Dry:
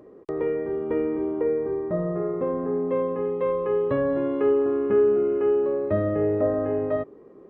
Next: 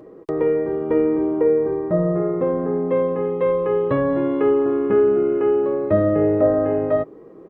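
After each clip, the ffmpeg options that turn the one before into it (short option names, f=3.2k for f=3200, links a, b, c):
-af "aecho=1:1:6.2:0.3,volume=5.5dB"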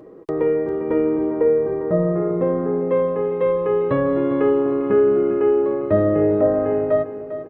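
-af "aecho=1:1:400|800|1200|1600:0.251|0.103|0.0422|0.0173"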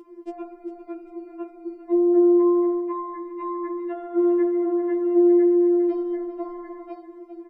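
-af "afftfilt=real='re*4*eq(mod(b,16),0)':imag='im*4*eq(mod(b,16),0)':win_size=2048:overlap=0.75"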